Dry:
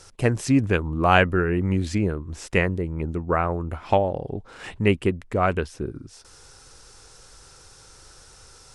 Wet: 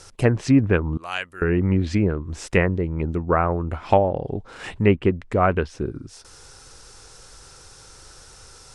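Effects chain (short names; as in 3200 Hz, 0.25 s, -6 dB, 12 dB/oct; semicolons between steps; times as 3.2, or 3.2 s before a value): 0.97–1.42 pre-emphasis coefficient 0.97; treble ducked by the level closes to 2000 Hz, closed at -17 dBFS; gain +3 dB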